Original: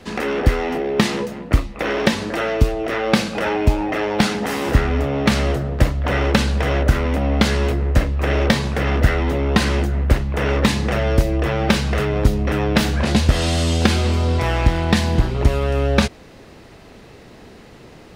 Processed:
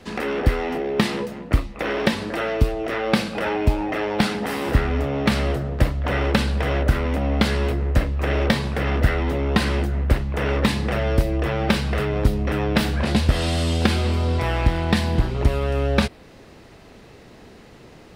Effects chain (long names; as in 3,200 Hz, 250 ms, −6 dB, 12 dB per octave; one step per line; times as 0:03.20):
dynamic equaliser 6,500 Hz, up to −7 dB, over −48 dBFS, Q 3
level −3 dB